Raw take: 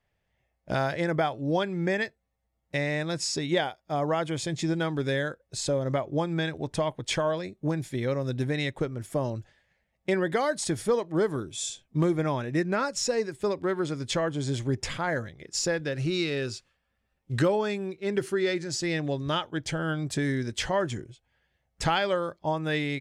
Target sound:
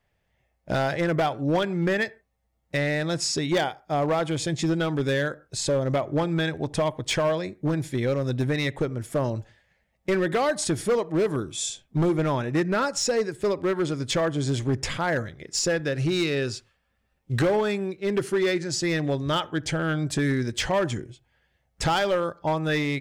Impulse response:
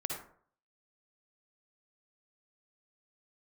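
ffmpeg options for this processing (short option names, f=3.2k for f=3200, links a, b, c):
-filter_complex "[0:a]asplit=2[a][b];[1:a]atrim=start_sample=2205,afade=t=out:st=0.21:d=0.01,atrim=end_sample=9702,lowpass=2.8k[c];[b][c]afir=irnorm=-1:irlink=0,volume=-22dB[d];[a][d]amix=inputs=2:normalize=0,asoftclip=type=hard:threshold=-21.5dB,volume=3.5dB"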